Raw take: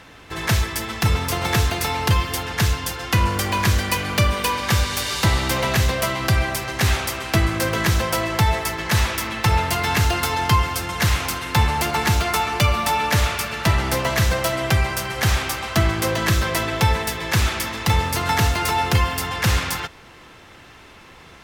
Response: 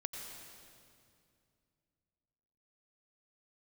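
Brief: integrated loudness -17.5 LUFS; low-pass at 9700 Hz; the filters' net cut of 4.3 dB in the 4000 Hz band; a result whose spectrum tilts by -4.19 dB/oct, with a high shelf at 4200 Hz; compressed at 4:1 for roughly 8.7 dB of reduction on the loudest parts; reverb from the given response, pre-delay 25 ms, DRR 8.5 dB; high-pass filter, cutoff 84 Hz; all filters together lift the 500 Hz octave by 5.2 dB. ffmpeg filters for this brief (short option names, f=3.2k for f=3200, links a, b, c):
-filter_complex "[0:a]highpass=84,lowpass=9.7k,equalizer=f=500:t=o:g=6.5,equalizer=f=4k:t=o:g=-7.5,highshelf=f=4.2k:g=3,acompressor=threshold=-24dB:ratio=4,asplit=2[a][b];[1:a]atrim=start_sample=2205,adelay=25[c];[b][c]afir=irnorm=-1:irlink=0,volume=-8dB[d];[a][d]amix=inputs=2:normalize=0,volume=8.5dB"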